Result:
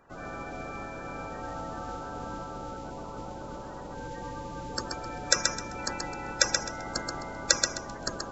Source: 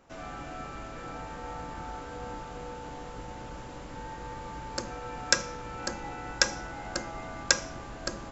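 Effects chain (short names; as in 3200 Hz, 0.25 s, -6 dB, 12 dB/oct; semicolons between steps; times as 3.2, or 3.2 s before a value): bin magnitudes rounded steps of 30 dB; thinning echo 0.13 s, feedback 24%, level -4 dB; gain +1 dB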